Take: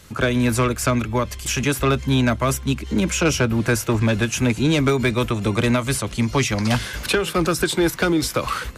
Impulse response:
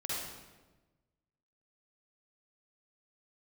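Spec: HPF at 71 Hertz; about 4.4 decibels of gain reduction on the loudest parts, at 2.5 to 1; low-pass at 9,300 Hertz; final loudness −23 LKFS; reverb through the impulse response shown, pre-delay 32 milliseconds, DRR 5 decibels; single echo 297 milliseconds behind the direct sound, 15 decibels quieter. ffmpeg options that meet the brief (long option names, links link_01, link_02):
-filter_complex "[0:a]highpass=71,lowpass=9300,acompressor=threshold=-21dB:ratio=2.5,aecho=1:1:297:0.178,asplit=2[link_01][link_02];[1:a]atrim=start_sample=2205,adelay=32[link_03];[link_02][link_03]afir=irnorm=-1:irlink=0,volume=-8.5dB[link_04];[link_01][link_04]amix=inputs=2:normalize=0"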